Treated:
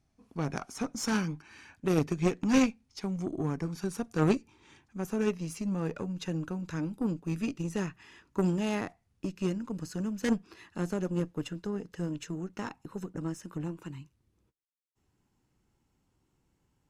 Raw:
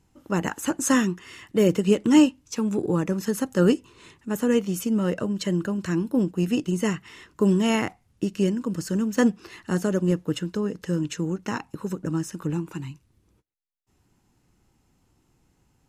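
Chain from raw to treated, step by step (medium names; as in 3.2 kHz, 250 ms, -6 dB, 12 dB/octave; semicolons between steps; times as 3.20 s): gliding tape speed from 83% -> 105%; treble shelf 9.2 kHz -5 dB; Chebyshev shaper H 2 -7 dB, 6 -20 dB, 8 -16 dB, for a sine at -5 dBFS; trim -8.5 dB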